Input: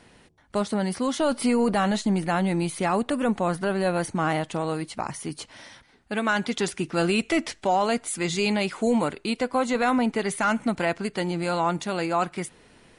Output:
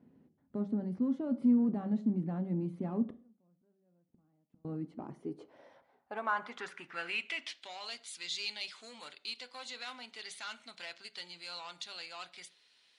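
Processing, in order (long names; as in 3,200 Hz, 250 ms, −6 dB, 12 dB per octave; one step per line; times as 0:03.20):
harmonic generator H 5 −23 dB, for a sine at −13 dBFS
band-pass filter sweep 230 Hz → 4,000 Hz, 0:04.78–0:07.73
0:03.05–0:04.65: gate with flip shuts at −31 dBFS, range −36 dB
on a send: convolution reverb RT60 0.40 s, pre-delay 3 ms, DRR 11.5 dB
on the sum: level −4.5 dB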